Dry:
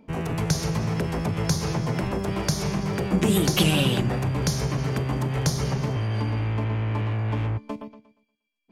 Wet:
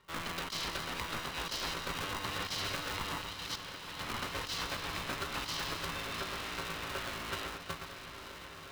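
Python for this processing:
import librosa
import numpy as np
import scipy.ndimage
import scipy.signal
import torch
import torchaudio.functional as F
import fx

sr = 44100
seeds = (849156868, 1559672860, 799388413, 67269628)

p1 = scipy.signal.sosfilt(scipy.signal.cheby1(3, 1.0, [560.0, 4600.0], 'bandpass', fs=sr, output='sos'), x)
p2 = fx.peak_eq(p1, sr, hz=3500.0, db=13.5, octaves=0.28)
p3 = fx.over_compress(p2, sr, threshold_db=-33.0, ratio=-0.5)
p4 = p3 + fx.echo_diffused(p3, sr, ms=981, feedback_pct=62, wet_db=-9.5, dry=0)
p5 = p4 * np.sign(np.sin(2.0 * np.pi * 490.0 * np.arange(len(p4)) / sr))
y = F.gain(torch.from_numpy(p5), -5.5).numpy()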